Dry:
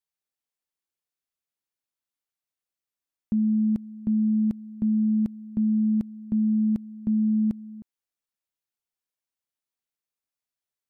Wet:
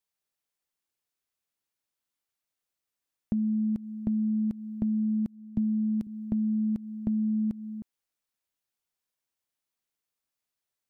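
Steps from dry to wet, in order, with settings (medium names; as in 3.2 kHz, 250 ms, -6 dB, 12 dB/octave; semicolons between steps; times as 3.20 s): compression, threshold -29 dBFS, peak gain reduction 8 dB; 5.26–6.07 s: three bands expanded up and down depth 70%; trim +3 dB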